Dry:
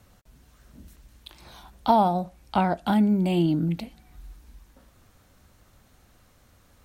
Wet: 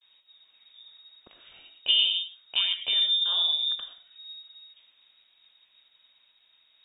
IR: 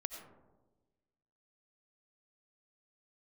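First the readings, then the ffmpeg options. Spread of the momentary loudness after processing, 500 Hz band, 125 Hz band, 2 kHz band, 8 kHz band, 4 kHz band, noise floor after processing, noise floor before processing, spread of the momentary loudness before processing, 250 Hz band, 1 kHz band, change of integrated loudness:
21 LU, under -25 dB, under -40 dB, +1.0 dB, no reading, +20.5 dB, -65 dBFS, -60 dBFS, 10 LU, under -40 dB, -25.5 dB, 0.0 dB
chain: -filter_complex "[0:a]lowpass=f=3200:t=q:w=0.5098,lowpass=f=3200:t=q:w=0.6013,lowpass=f=3200:t=q:w=0.9,lowpass=f=3200:t=q:w=2.563,afreqshift=-3800,agate=range=0.0224:threshold=0.00178:ratio=3:detection=peak[s0];[1:a]atrim=start_sample=2205,afade=t=out:st=0.18:d=0.01,atrim=end_sample=8379[s1];[s0][s1]afir=irnorm=-1:irlink=0,volume=0.841"

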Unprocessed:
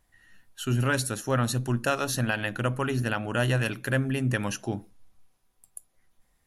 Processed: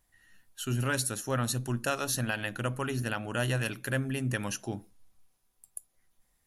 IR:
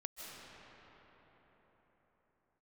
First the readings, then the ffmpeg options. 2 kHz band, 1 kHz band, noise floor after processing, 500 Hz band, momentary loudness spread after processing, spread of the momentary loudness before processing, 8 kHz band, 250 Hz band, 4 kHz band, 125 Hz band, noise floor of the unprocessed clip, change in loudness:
-4.0 dB, -4.5 dB, -74 dBFS, -5.0 dB, 13 LU, 11 LU, +0.5 dB, -5.0 dB, -2.5 dB, -5.0 dB, -70 dBFS, -4.0 dB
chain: -af "highshelf=f=4700:g=7,volume=0.562"

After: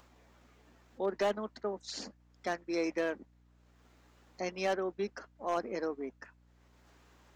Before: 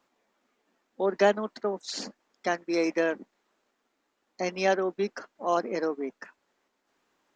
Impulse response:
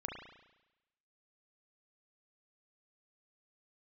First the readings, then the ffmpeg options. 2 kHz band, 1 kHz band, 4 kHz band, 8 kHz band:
-8.0 dB, -7.5 dB, -6.5 dB, -6.5 dB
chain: -af "asoftclip=type=hard:threshold=0.133,acompressor=mode=upward:threshold=0.00562:ratio=2.5,aeval=exprs='val(0)+0.00141*(sin(2*PI*60*n/s)+sin(2*PI*2*60*n/s)/2+sin(2*PI*3*60*n/s)/3+sin(2*PI*4*60*n/s)/4+sin(2*PI*5*60*n/s)/5)':c=same,volume=0.473"

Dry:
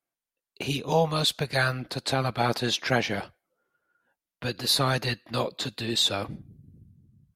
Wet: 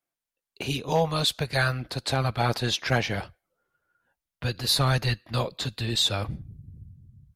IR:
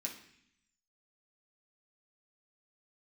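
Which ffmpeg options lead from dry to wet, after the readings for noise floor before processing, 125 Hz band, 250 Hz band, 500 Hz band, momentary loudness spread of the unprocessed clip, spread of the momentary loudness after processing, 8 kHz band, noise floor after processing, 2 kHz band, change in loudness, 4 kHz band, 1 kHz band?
under -85 dBFS, +4.0 dB, -1.0 dB, -1.0 dB, 11 LU, 11 LU, 0.0 dB, under -85 dBFS, 0.0 dB, 0.0 dB, 0.0 dB, -0.5 dB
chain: -af "asoftclip=type=hard:threshold=0.224,asubboost=boost=4.5:cutoff=120"

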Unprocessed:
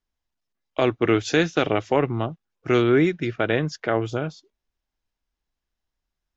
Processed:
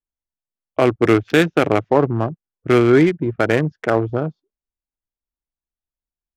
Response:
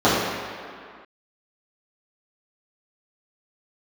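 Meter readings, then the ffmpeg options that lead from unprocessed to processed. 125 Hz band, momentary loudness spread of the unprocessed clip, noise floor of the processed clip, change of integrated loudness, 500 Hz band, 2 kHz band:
+5.5 dB, 11 LU, under -85 dBFS, +5.0 dB, +5.5 dB, +4.0 dB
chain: -af "afwtdn=0.0316,adynamicsmooth=sensitivity=3:basefreq=1700,volume=1.88"

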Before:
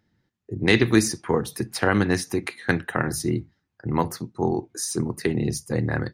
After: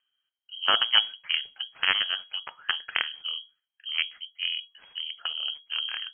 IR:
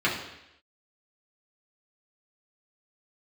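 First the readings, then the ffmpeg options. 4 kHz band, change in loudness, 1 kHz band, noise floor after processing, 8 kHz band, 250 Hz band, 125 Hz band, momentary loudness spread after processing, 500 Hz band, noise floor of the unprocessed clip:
+11.0 dB, -3.0 dB, -5.5 dB, under -85 dBFS, under -40 dB, under -30 dB, under -35 dB, 13 LU, -21.5 dB, -77 dBFS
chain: -af "aeval=exprs='0.631*(cos(1*acos(clip(val(0)/0.631,-1,1)))-cos(1*PI/2))+0.1*(cos(2*acos(clip(val(0)/0.631,-1,1)))-cos(2*PI/2))+0.126*(cos(3*acos(clip(val(0)/0.631,-1,1)))-cos(3*PI/2))+0.0158*(cos(6*acos(clip(val(0)/0.631,-1,1)))-cos(6*PI/2))':c=same,tremolo=f=3.1:d=0.3,lowpass=f=2800:t=q:w=0.5098,lowpass=f=2800:t=q:w=0.6013,lowpass=f=2800:t=q:w=0.9,lowpass=f=2800:t=q:w=2.563,afreqshift=-3300"

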